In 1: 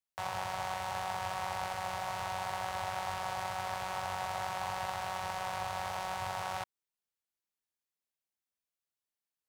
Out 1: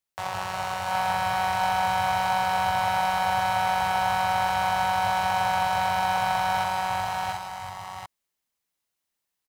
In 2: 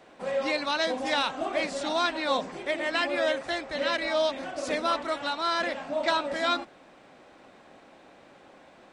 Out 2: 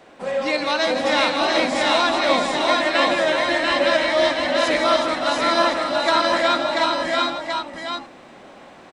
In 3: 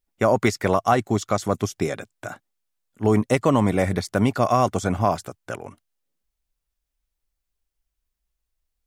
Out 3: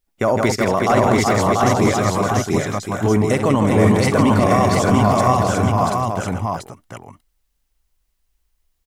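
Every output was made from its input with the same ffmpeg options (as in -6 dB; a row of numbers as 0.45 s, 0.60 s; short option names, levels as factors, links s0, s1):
-filter_complex "[0:a]asplit=2[s0][s1];[s1]aecho=0:1:59|160|371|733|734:0.178|0.376|0.398|0.316|0.596[s2];[s0][s2]amix=inputs=2:normalize=0,alimiter=limit=0.237:level=0:latency=1:release=15,asplit=2[s3][s4];[s4]aecho=0:1:687:0.708[s5];[s3][s5]amix=inputs=2:normalize=0,volume=1.88"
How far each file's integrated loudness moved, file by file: +12.0 LU, +9.0 LU, +5.0 LU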